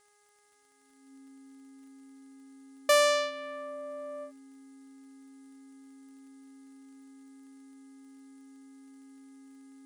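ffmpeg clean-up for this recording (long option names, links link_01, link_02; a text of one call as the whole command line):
ffmpeg -i in.wav -af "adeclick=threshold=4,bandreject=frequency=413.3:width_type=h:width=4,bandreject=frequency=826.6:width_type=h:width=4,bandreject=frequency=1239.9:width_type=h:width=4,bandreject=frequency=1653.2:width_type=h:width=4,bandreject=frequency=2066.5:width_type=h:width=4,bandreject=frequency=270:width=30,afftdn=noise_reduction=29:noise_floor=-61" out.wav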